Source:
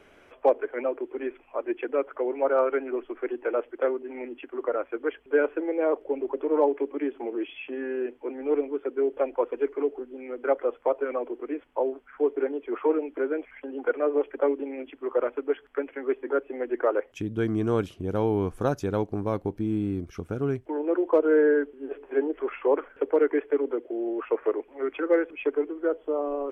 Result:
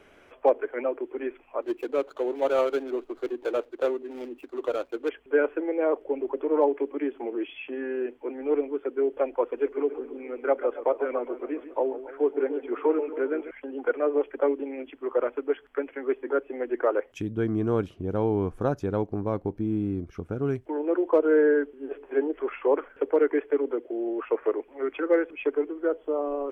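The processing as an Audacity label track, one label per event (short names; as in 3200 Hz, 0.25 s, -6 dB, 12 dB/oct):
1.620000	5.090000	median filter over 25 samples
9.440000	13.510000	warbling echo 0.137 s, feedback 57%, depth 109 cents, level -12.5 dB
17.310000	20.450000	high shelf 2800 Hz -11 dB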